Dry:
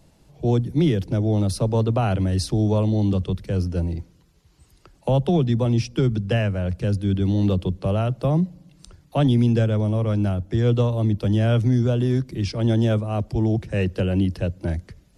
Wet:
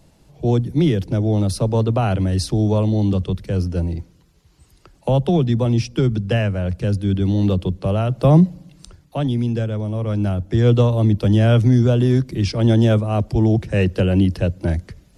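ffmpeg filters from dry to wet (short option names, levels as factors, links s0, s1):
-af "volume=6.68,afade=t=in:st=8.08:d=0.27:silence=0.473151,afade=t=out:st=8.35:d=0.84:silence=0.266073,afade=t=in:st=9.89:d=0.79:silence=0.421697"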